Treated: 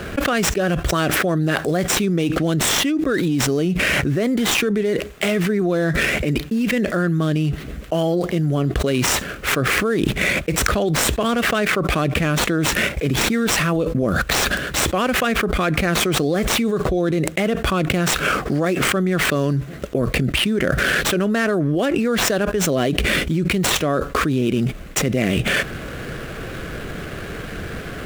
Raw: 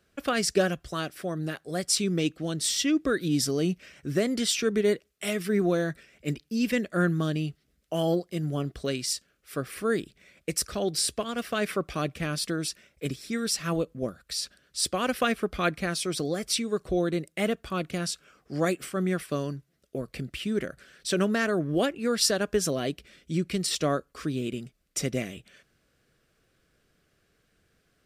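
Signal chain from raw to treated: median filter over 9 samples; fast leveller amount 100%

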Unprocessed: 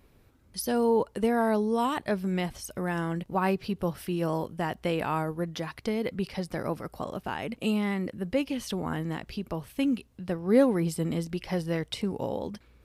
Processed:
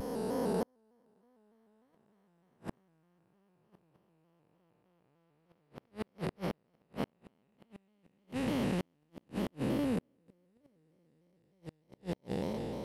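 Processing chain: time blur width 1.42 s; flipped gate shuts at -26 dBFS, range -42 dB; shaped vibrato square 3.3 Hz, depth 100 cents; gain +4.5 dB

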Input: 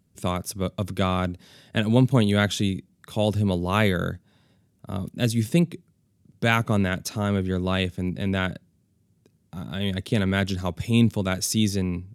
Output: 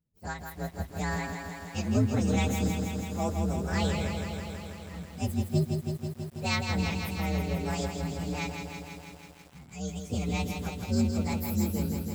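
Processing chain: inharmonic rescaling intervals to 127%; spectral noise reduction 7 dB; lo-fi delay 0.163 s, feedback 80%, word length 8-bit, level -5.5 dB; gain -6 dB

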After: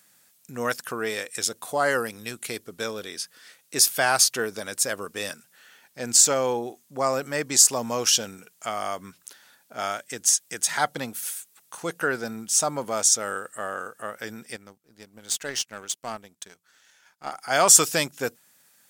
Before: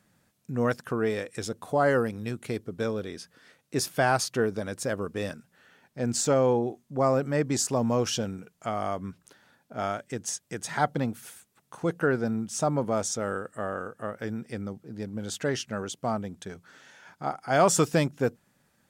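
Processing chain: tilt +4 dB/oct; 14.56–17.32 power-law curve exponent 1.4; gain +2 dB

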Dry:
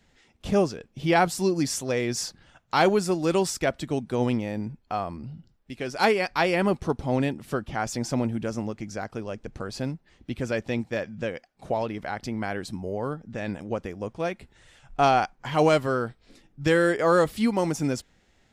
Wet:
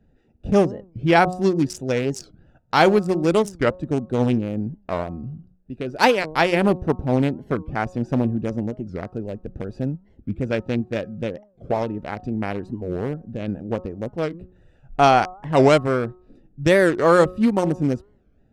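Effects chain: Wiener smoothing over 41 samples; de-hum 182.4 Hz, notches 7; record warp 45 rpm, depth 250 cents; gain +6 dB

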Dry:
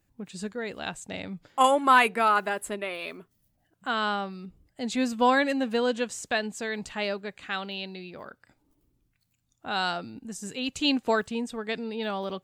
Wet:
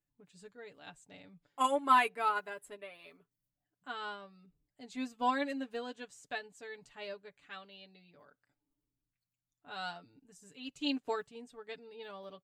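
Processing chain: comb 6.9 ms, depth 76%; upward expander 1.5:1, over -35 dBFS; gain -9 dB

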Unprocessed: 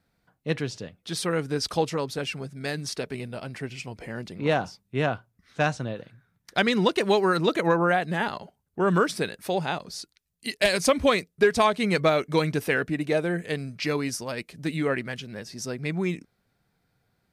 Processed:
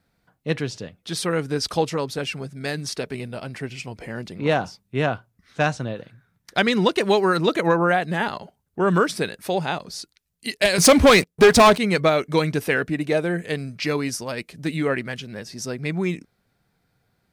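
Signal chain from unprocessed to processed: 10.78–11.78 sample leveller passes 3; gain +3 dB

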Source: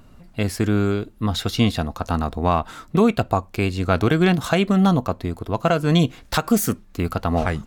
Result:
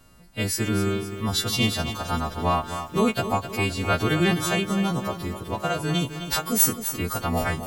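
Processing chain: frequency quantiser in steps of 2 st; 4.48–6.6 compressor 2:1, threshold -20 dBFS, peak gain reduction 5 dB; lo-fi delay 0.258 s, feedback 55%, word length 7-bit, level -10 dB; gain -4 dB

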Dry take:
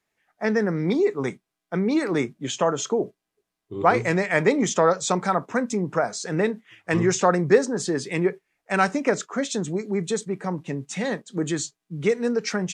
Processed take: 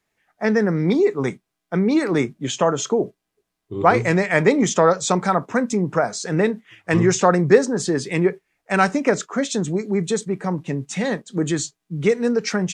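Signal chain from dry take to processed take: low shelf 150 Hz +5 dB; gain +3 dB

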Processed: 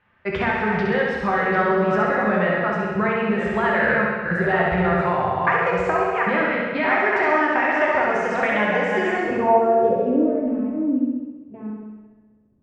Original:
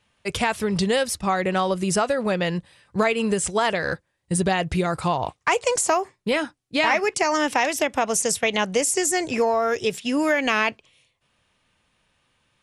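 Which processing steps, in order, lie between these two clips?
reverse delay 0.585 s, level -6.5 dB; LPF 7200 Hz 12 dB/oct; compressor, threshold -23 dBFS, peak gain reduction 8 dB; low-pass sweep 1700 Hz -> 290 Hz, 8.96–10.52; flutter echo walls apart 11.3 m, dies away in 1 s; plate-style reverb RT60 1.2 s, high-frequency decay 1×, DRR 0 dB

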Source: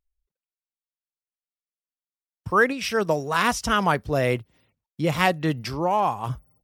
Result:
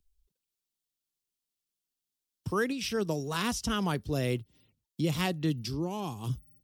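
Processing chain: band shelf 1100 Hz -9.5 dB 2.5 oct, from 5.49 s -16 dB; three-band squash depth 40%; gain -4 dB

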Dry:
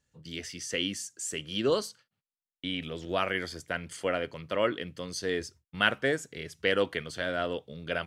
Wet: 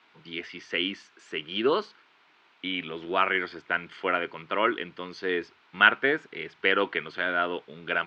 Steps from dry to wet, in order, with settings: in parallel at -8 dB: requantised 8-bit, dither triangular; on the sum: speaker cabinet 250–3500 Hz, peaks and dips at 370 Hz +4 dB, 540 Hz -7 dB, 960 Hz +6 dB, 1400 Hz +6 dB, 2300 Hz +4 dB

